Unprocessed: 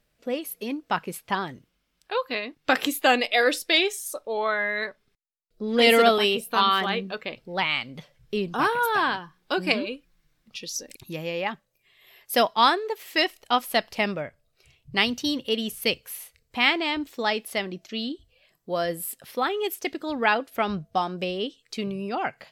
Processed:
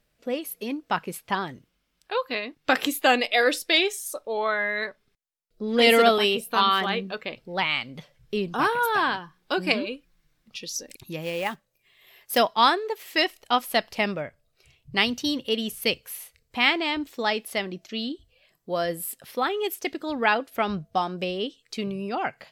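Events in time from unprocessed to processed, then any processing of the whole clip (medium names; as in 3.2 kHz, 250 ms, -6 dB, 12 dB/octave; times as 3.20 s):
11.22–12.38 s: short-mantissa float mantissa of 2-bit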